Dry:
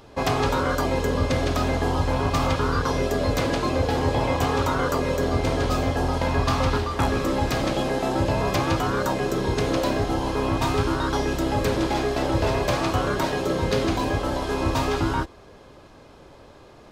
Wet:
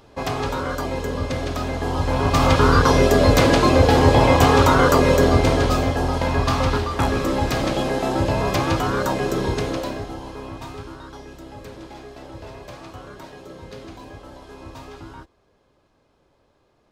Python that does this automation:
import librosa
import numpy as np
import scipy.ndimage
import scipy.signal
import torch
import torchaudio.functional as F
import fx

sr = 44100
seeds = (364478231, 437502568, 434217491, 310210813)

y = fx.gain(x, sr, db=fx.line((1.74, -2.5), (2.65, 8.5), (5.18, 8.5), (5.97, 2.0), (9.45, 2.0), (10.14, -8.5), (11.2, -15.5)))